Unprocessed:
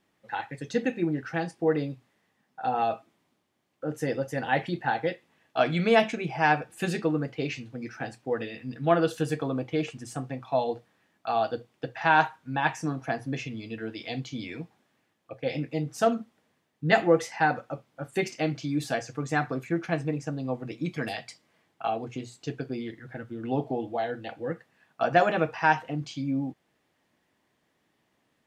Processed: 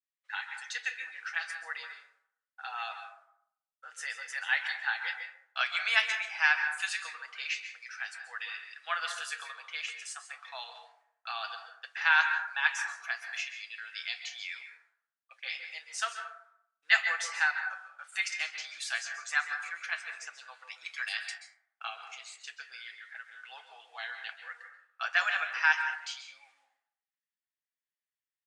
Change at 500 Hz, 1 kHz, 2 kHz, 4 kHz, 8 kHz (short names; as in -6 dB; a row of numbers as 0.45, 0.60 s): -25.5, -10.0, +3.0, +3.5, +3.0 dB